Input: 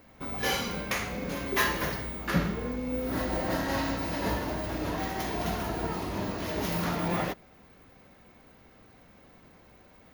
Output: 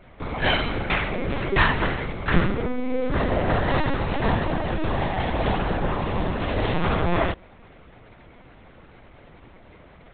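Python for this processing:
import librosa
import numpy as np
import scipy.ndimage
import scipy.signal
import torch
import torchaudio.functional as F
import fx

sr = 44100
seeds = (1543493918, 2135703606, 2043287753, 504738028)

y = fx.lpc_vocoder(x, sr, seeds[0], excitation='pitch_kept', order=10)
y = y * librosa.db_to_amplitude(8.5)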